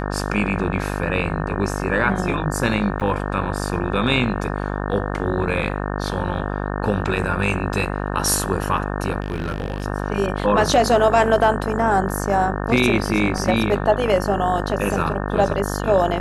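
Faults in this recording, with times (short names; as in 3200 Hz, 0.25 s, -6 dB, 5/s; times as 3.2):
buzz 50 Hz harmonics 36 -25 dBFS
3–3.01 gap 7.4 ms
9.2–9.86 clipped -19.5 dBFS
13.38 gap 2.2 ms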